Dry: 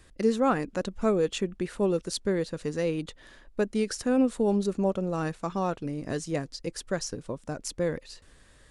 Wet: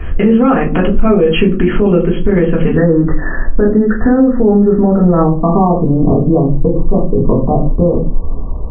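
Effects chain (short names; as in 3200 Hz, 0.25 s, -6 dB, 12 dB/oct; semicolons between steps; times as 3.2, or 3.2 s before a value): low shelf 64 Hz +4.5 dB; compressor 8:1, threshold -36 dBFS, peak gain reduction 17.5 dB; brick-wall FIR low-pass 3300 Hz, from 2.74 s 2000 Hz, from 5.19 s 1200 Hz; reverb RT60 0.40 s, pre-delay 3 ms, DRR -4.5 dB; maximiser +26 dB; mismatched tape noise reduction decoder only; gain -1 dB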